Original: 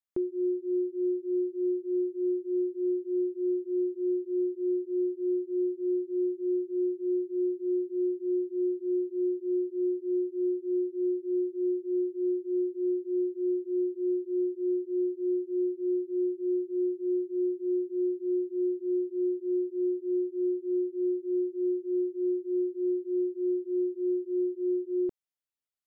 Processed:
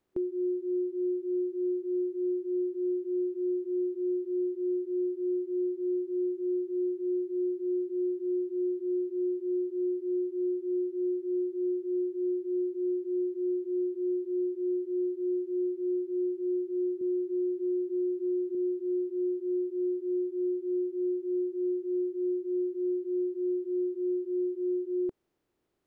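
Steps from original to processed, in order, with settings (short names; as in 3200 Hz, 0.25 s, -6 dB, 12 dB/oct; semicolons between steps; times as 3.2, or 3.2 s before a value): per-bin compression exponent 0.6; 17.01–18.55 three-band squash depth 70%; gain -2 dB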